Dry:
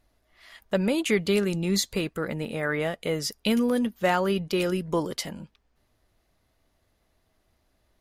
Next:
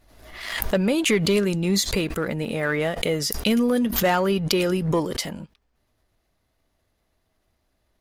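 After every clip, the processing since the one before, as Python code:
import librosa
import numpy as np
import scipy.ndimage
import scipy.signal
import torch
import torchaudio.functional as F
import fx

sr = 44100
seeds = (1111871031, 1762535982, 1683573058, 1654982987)

y = fx.leveller(x, sr, passes=1)
y = fx.pre_swell(y, sr, db_per_s=56.0)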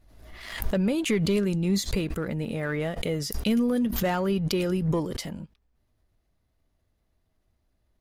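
y = fx.low_shelf(x, sr, hz=270.0, db=9.5)
y = y * 10.0 ** (-8.0 / 20.0)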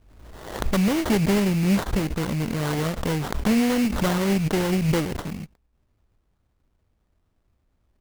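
y = fx.lower_of_two(x, sr, delay_ms=0.55)
y = fx.sample_hold(y, sr, seeds[0], rate_hz=2500.0, jitter_pct=20)
y = y * 10.0 ** (4.0 / 20.0)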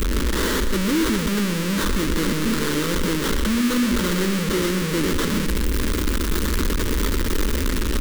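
y = np.sign(x) * np.sqrt(np.mean(np.square(x)))
y = fx.fixed_phaser(y, sr, hz=300.0, stages=4)
y = y + 10.0 ** (-9.0 / 20.0) * np.pad(y, (int(122 * sr / 1000.0), 0))[:len(y)]
y = y * 10.0 ** (6.5 / 20.0)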